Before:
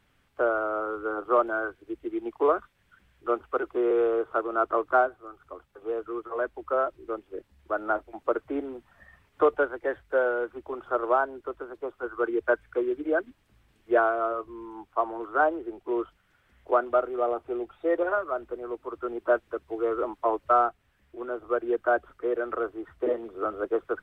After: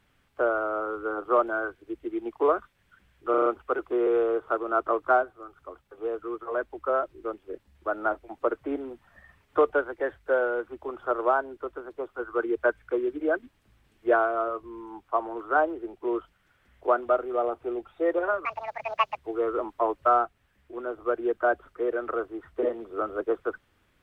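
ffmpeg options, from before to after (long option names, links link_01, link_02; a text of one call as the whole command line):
ffmpeg -i in.wav -filter_complex "[0:a]asplit=7[link_01][link_02][link_03][link_04][link_05][link_06][link_07];[link_01]atrim=end=3.342[link_08];[link_02]atrim=start=3.298:end=3.342[link_09];[link_03]atrim=start=3.298:end=3.342[link_10];[link_04]atrim=start=3.298:end=3.342[link_11];[link_05]atrim=start=3.298:end=18.294[link_12];[link_06]atrim=start=18.29:end=19.61,asetpts=PTS-STARTPTS,asetrate=80703,aresample=44100[link_13];[link_07]atrim=start=19.606[link_14];[link_08][link_09]acrossfade=duration=0.004:curve1=hsin:curve2=hsin[link_15];[link_15][link_10]acrossfade=duration=0.004:curve1=hsin:curve2=hsin[link_16];[link_16][link_11]acrossfade=duration=0.004:curve1=hsin:curve2=hsin[link_17];[link_17][link_12]acrossfade=duration=0.004:curve1=hsin:curve2=hsin[link_18];[link_18][link_13]acrossfade=duration=0.004:curve1=hsin:curve2=hsin[link_19];[link_19][link_14]acrossfade=duration=0.004:curve1=hsin:curve2=hsin" out.wav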